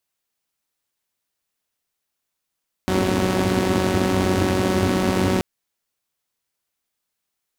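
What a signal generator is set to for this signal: four-cylinder engine model, steady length 2.53 s, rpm 5600, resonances 100/240 Hz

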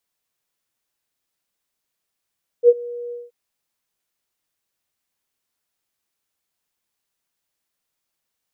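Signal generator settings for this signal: ADSR sine 480 Hz, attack 56 ms, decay 44 ms, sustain -22.5 dB, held 0.49 s, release 0.187 s -5 dBFS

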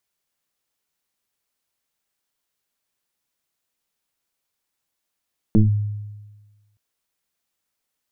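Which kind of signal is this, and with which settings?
FM tone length 1.22 s, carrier 104 Hz, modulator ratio 1.05, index 2, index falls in 0.15 s linear, decay 1.32 s, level -8.5 dB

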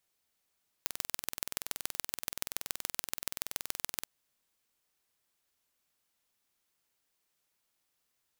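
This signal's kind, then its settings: pulse train 21.1/s, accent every 3, -4 dBFS 3.18 s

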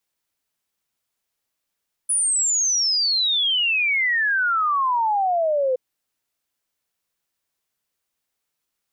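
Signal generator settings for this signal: log sweep 10000 Hz -> 500 Hz 3.67 s -17.5 dBFS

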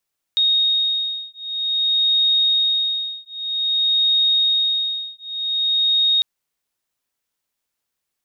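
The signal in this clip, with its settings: beating tones 3730 Hz, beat 0.52 Hz, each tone -19.5 dBFS 5.85 s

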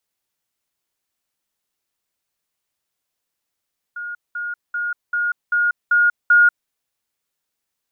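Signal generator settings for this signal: level ladder 1430 Hz -26.5 dBFS, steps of 3 dB, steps 7, 0.19 s 0.20 s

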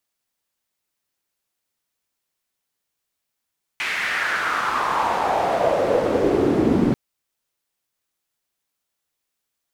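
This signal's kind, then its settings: swept filtered noise pink, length 3.14 s bandpass, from 2300 Hz, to 250 Hz, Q 3.5, exponential, gain ramp +8 dB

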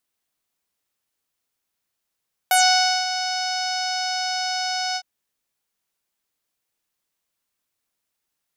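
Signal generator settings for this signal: synth note saw F#5 12 dB/oct, low-pass 5300 Hz, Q 6.1, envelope 1.5 oct, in 0.12 s, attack 1.8 ms, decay 0.54 s, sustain -11 dB, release 0.06 s, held 2.45 s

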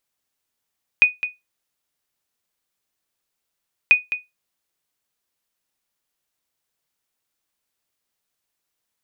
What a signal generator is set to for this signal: sonar ping 2480 Hz, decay 0.19 s, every 2.89 s, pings 2, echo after 0.21 s, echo -12 dB -4 dBFS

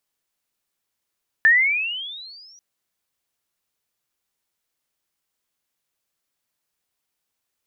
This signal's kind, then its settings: gliding synth tone sine, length 1.14 s, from 1750 Hz, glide +21 st, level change -37.5 dB, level -9.5 dB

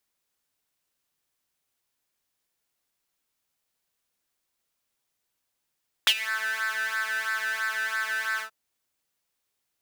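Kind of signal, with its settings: synth patch with pulse-width modulation A3, interval +7 st, oscillator 2 level -16 dB, sub -29 dB, noise -18 dB, filter highpass, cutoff 1100 Hz, Q 6.5, filter envelope 1.5 oct, filter decay 0.24 s, filter sustain 35%, attack 2.5 ms, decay 0.06 s, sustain -17 dB, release 0.10 s, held 2.33 s, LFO 3 Hz, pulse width 14%, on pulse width 7%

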